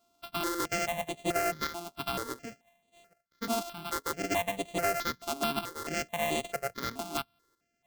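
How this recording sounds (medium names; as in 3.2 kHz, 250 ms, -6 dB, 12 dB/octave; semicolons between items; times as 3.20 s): a buzz of ramps at a fixed pitch in blocks of 64 samples; chopped level 0.51 Hz, depth 60%, duty 85%; aliases and images of a low sample rate 10 kHz, jitter 0%; notches that jump at a steady rate 4.6 Hz 500–5200 Hz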